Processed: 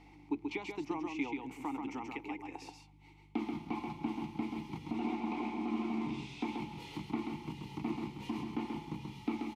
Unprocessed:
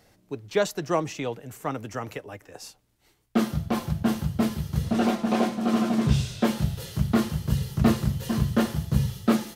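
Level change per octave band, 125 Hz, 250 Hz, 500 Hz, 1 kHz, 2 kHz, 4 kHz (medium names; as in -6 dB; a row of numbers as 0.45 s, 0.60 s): -21.0 dB, -11.5 dB, -15.5 dB, -9.5 dB, -9.5 dB, -14.0 dB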